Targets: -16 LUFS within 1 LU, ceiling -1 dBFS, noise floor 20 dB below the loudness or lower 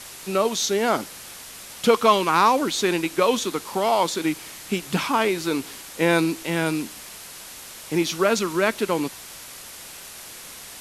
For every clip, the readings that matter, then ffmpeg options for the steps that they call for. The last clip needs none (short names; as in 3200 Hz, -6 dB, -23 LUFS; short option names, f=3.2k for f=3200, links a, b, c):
noise floor -41 dBFS; noise floor target -43 dBFS; loudness -22.5 LUFS; peak -4.0 dBFS; loudness target -16.0 LUFS
-> -af "afftdn=nr=6:nf=-41"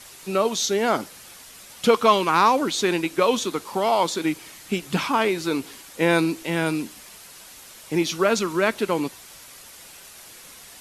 noise floor -45 dBFS; loudness -22.5 LUFS; peak -4.0 dBFS; loudness target -16.0 LUFS
-> -af "volume=6.5dB,alimiter=limit=-1dB:level=0:latency=1"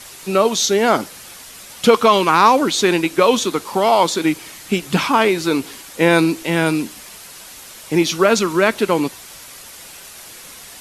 loudness -16.5 LUFS; peak -1.0 dBFS; noise floor -39 dBFS